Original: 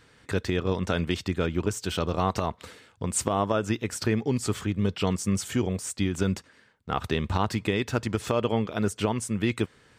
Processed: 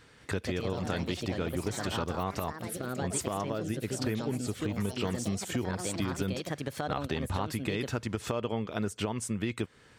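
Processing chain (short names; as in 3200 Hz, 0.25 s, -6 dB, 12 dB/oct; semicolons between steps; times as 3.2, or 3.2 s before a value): echoes that change speed 0.209 s, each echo +4 st, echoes 3, each echo -6 dB; 2.53–4.62 rotary speaker horn 1.1 Hz; compressor 3:1, threshold -30 dBFS, peak gain reduction 8.5 dB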